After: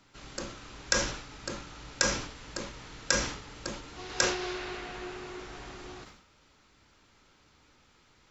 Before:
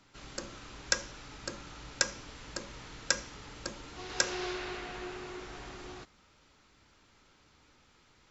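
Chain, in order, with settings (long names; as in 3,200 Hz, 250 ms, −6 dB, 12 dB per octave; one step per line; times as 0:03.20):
level that may fall only so fast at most 76 dB per second
level +1 dB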